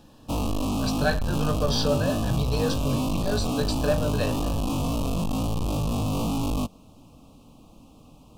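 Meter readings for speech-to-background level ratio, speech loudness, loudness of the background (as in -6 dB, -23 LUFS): -1.5 dB, -29.0 LUFS, -27.5 LUFS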